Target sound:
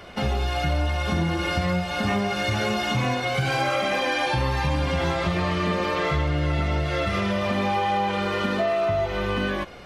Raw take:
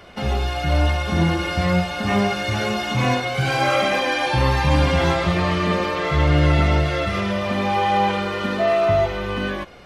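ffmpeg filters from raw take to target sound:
ffmpeg -i in.wav -af "acompressor=threshold=-22dB:ratio=6,volume=1.5dB" out.wav

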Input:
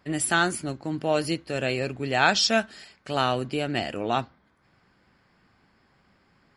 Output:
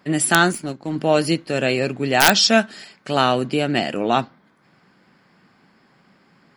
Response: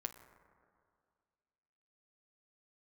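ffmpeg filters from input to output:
-filter_complex "[0:a]asettb=1/sr,asplit=3[link_01][link_02][link_03];[link_01]atrim=end=0.524[link_04];[link_02]atrim=start=0.52:end=0.96,asetpts=PTS-STARTPTS,afade=type=in:duration=0.004:curve=qsin,afade=type=out:start_time=0.436:duration=0.004:curve=qsin,aeval=exprs='0.119*(cos(1*acos(clip(val(0)/0.119,-1,1)))-cos(1*PI/2))+0.0335*(cos(3*acos(clip(val(0)/0.119,-1,1)))-cos(3*PI/2))+0.0188*(cos(5*acos(clip(val(0)/0.119,-1,1)))-cos(5*PI/2))+0.00841*(cos(7*acos(clip(val(0)/0.119,-1,1)))-cos(7*PI/2))+0.00299*(cos(8*acos(clip(val(0)/0.119,-1,1)))-cos(8*PI/2))':channel_layout=same[link_05];[link_03]atrim=start=0.956[link_06];[link_04][link_05]acrossfade=duration=0.004:curve1=hsin:curve2=qsin[link_07];[link_07][link_06]acrossfade=duration=0.004:curve1=qsin:curve2=hsin,lowshelf=frequency=110:width_type=q:width=1.5:gain=-13,aeval=exprs='(mod(2.37*val(0)+1,2)-1)/2.37':channel_layout=same,volume=6.5dB"

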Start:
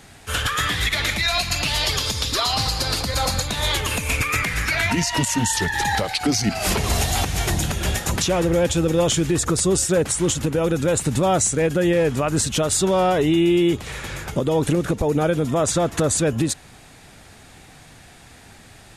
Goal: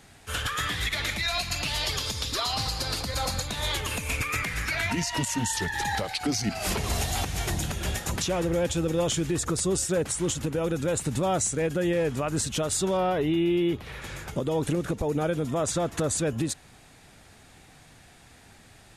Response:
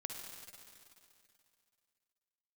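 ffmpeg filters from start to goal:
-filter_complex "[0:a]asettb=1/sr,asplit=3[link_01][link_02][link_03];[link_01]atrim=end=12.974[link_04];[link_02]atrim=start=12.97:end=14.02,asetpts=PTS-STARTPTS,afade=type=in:duration=0.004:curve=qsin,afade=type=out:start_time=1.046:duration=0.004:curve=qsin,equalizer=frequency=7600:width_type=o:width=0.89:gain=-13[link_05];[link_03]atrim=start=14.016[link_06];[link_04][link_05]acrossfade=duration=0.004:curve1=hsin:curve2=qsin[link_07];[link_07][link_06]acrossfade=duration=0.004:curve1=qsin:curve2=hsin,volume=-7dB"

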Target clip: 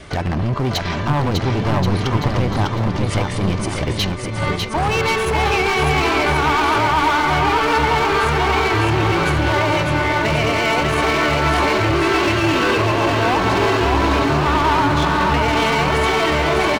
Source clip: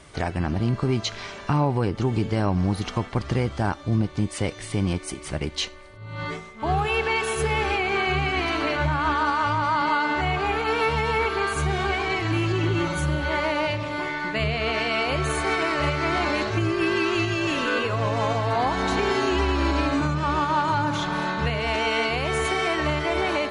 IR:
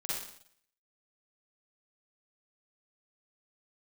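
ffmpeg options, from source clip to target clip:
-filter_complex "[0:a]equalizer=frequency=9000:width_type=o:width=1.1:gain=-8.5,asplit=2[link_01][link_02];[link_02]alimiter=limit=-21.5dB:level=0:latency=1:release=216,volume=-1.5dB[link_03];[link_01][link_03]amix=inputs=2:normalize=0,asoftclip=type=hard:threshold=-21.5dB,adynamicequalizer=threshold=0.00562:dfrequency=1000:dqfactor=6.7:tfrequency=1000:tqfactor=6.7:attack=5:release=100:ratio=0.375:range=2:mode=boostabove:tftype=bell,atempo=1.4,aecho=1:1:600|1080|1464|1771|2017:0.631|0.398|0.251|0.158|0.1,volume=5.5dB"

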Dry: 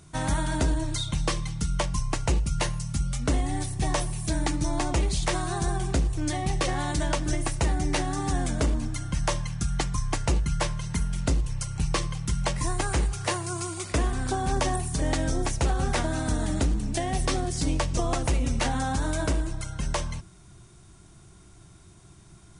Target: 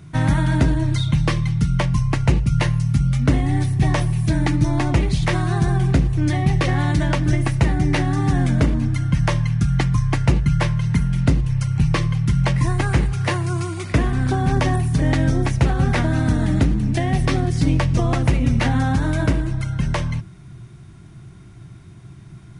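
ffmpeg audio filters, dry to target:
ffmpeg -i in.wav -af "equalizer=frequency=125:width_type=o:width=1:gain=12,equalizer=frequency=250:width_type=o:width=1:gain=5,equalizer=frequency=2000:width_type=o:width=1:gain=6,equalizer=frequency=8000:width_type=o:width=1:gain=-9,volume=2.5dB" out.wav

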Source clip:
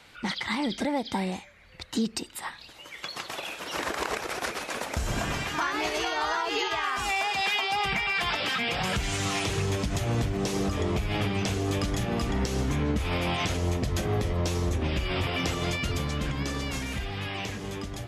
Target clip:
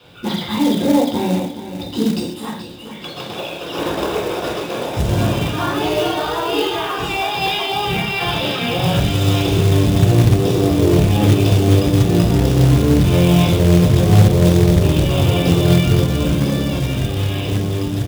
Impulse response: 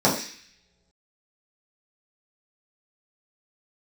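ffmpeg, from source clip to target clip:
-filter_complex "[0:a]aecho=1:1:425|850|1275|1700|2125:0.251|0.116|0.0532|0.0244|0.0112[link_01];[1:a]atrim=start_sample=2205,atrim=end_sample=4410,asetrate=28224,aresample=44100[link_02];[link_01][link_02]afir=irnorm=-1:irlink=0,acrusher=bits=4:mode=log:mix=0:aa=0.000001,volume=-12.5dB"

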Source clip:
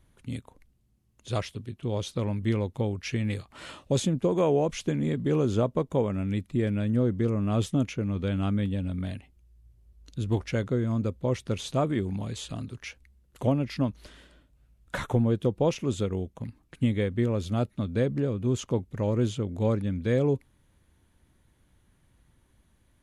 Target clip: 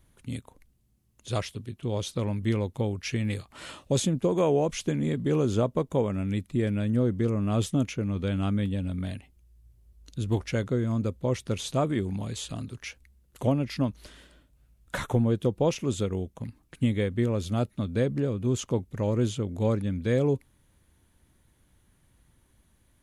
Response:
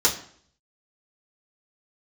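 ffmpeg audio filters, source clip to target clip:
-af "highshelf=frequency=6500:gain=6.5"

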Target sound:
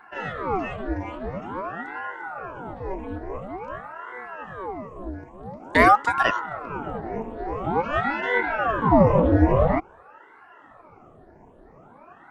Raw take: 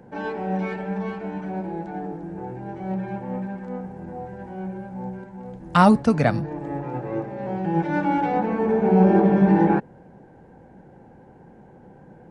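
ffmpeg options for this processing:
ffmpeg -i in.wav -af "afftfilt=real='re*pow(10,14/40*sin(2*PI*(0.66*log(max(b,1)*sr/1024/100)/log(2)-(2.6)*(pts-256)/sr)))':imag='im*pow(10,14/40*sin(2*PI*(0.66*log(max(b,1)*sr/1024/100)/log(2)-(2.6)*(pts-256)/sr)))':win_size=1024:overlap=0.75,aeval=exprs='val(0)*sin(2*PI*670*n/s+670*0.85/0.48*sin(2*PI*0.48*n/s))':channel_layout=same,volume=-1dB" out.wav

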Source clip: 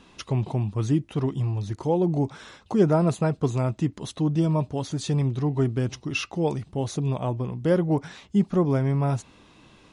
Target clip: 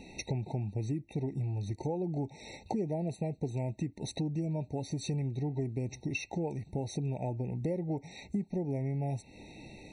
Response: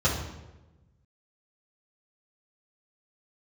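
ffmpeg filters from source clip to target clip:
-af "acompressor=threshold=-37dB:ratio=6,afftfilt=real='re*eq(mod(floor(b*sr/1024/910),2),0)':imag='im*eq(mod(floor(b*sr/1024/910),2),0)':win_size=1024:overlap=0.75,volume=4.5dB"

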